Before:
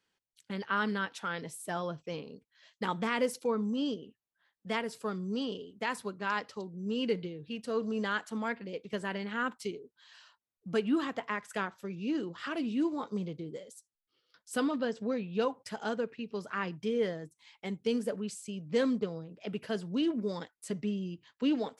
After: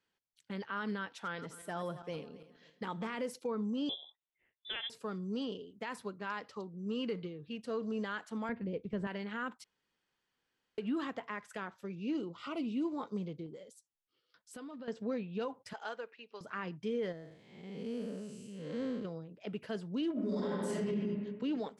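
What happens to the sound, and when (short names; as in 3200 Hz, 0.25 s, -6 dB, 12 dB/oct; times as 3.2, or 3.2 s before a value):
1.08–3.15 regenerating reverse delay 0.135 s, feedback 52%, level -13.5 dB
3.89–4.9 inverted band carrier 3700 Hz
6.54–7.48 bell 1200 Hz +12.5 dB 0.28 oct
8.49–9.07 RIAA curve playback
9.64–10.78 room tone
12.14–12.86 Butterworth band-stop 1700 Hz, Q 2.9
13.46–14.88 compressor, threshold -41 dBFS
15.73–16.41 BPF 680–6900 Hz
17.12–19.05 time blur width 0.281 s
20.12–20.87 reverb throw, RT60 1.5 s, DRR -10 dB
whole clip: high shelf 5600 Hz -7 dB; limiter -25 dBFS; gain -3 dB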